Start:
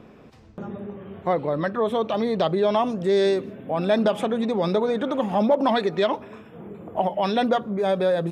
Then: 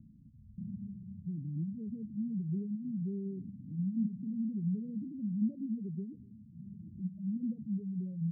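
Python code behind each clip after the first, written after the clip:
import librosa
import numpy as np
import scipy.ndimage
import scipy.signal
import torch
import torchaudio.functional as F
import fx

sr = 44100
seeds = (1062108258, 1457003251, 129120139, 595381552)

y = scipy.signal.sosfilt(scipy.signal.cheby2(4, 80, 1200.0, 'lowpass', fs=sr, output='sos'), x)
y = fx.spec_gate(y, sr, threshold_db=-20, keep='strong')
y = y * librosa.db_to_amplitude(-3.0)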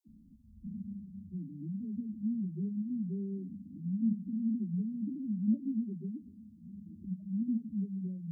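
y = fx.fixed_phaser(x, sr, hz=480.0, stages=6)
y = fx.dispersion(y, sr, late='lows', ms=85.0, hz=340.0)
y = y * librosa.db_to_amplitude(4.0)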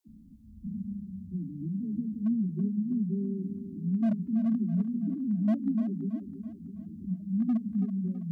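y = np.clip(x, -10.0 ** (-27.5 / 20.0), 10.0 ** (-27.5 / 20.0))
y = fx.echo_feedback(y, sr, ms=328, feedback_pct=48, wet_db=-10.0)
y = y * librosa.db_to_amplitude(5.5)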